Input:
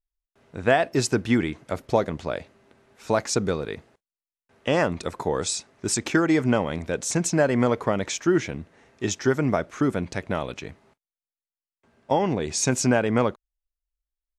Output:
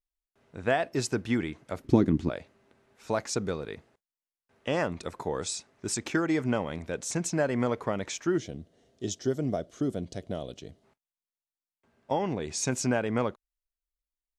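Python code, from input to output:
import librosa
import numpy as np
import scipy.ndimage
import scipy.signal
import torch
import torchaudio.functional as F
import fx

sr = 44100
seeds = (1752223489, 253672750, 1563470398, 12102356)

y = fx.low_shelf_res(x, sr, hz=420.0, db=10.5, q=3.0, at=(1.84, 2.3))
y = fx.spec_box(y, sr, start_s=8.37, length_s=2.47, low_hz=770.0, high_hz=2800.0, gain_db=-12)
y = y * 10.0 ** (-6.5 / 20.0)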